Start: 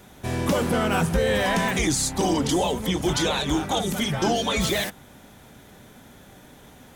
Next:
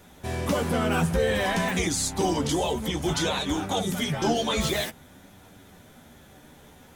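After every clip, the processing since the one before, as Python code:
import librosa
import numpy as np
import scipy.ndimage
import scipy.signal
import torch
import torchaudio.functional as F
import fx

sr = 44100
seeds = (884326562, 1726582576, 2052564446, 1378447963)

y = fx.chorus_voices(x, sr, voices=2, hz=0.55, base_ms=12, depth_ms=1.6, mix_pct=35)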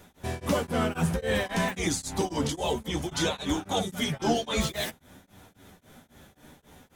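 y = x * np.abs(np.cos(np.pi * 3.7 * np.arange(len(x)) / sr))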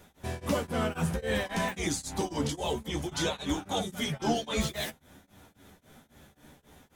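y = fx.doubler(x, sr, ms=14.0, db=-12.5)
y = y * librosa.db_to_amplitude(-3.0)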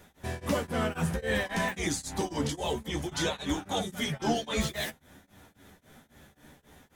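y = fx.peak_eq(x, sr, hz=1800.0, db=4.0, octaves=0.34)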